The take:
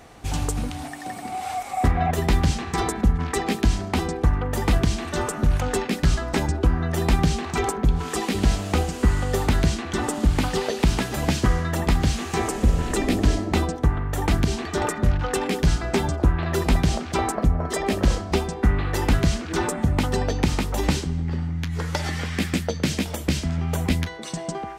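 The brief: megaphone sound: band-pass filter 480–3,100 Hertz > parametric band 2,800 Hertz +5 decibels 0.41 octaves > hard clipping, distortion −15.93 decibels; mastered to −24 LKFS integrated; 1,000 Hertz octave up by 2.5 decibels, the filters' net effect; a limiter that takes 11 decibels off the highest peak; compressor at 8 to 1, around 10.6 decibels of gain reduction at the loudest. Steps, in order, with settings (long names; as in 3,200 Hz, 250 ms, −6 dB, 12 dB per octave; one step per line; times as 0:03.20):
parametric band 1,000 Hz +4 dB
downward compressor 8 to 1, threshold −24 dBFS
brickwall limiter −21 dBFS
band-pass filter 480–3,100 Hz
parametric band 2,800 Hz +5 dB 0.41 octaves
hard clipping −29 dBFS
level +12.5 dB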